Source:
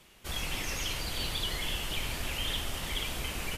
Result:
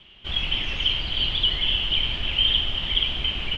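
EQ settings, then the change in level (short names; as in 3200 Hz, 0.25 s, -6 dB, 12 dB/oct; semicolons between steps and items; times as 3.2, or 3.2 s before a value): synth low-pass 3100 Hz, resonance Q 11; tilt -1.5 dB/oct; notch 490 Hz, Q 12; 0.0 dB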